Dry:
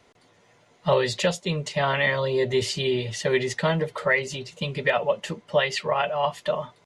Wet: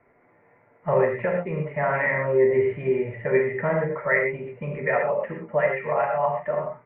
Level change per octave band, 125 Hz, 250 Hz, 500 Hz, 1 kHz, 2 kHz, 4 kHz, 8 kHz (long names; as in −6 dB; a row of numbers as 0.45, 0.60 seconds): −1.5 dB, +0.5 dB, +2.5 dB, +0.5 dB, 0.0 dB, below −25 dB, below −40 dB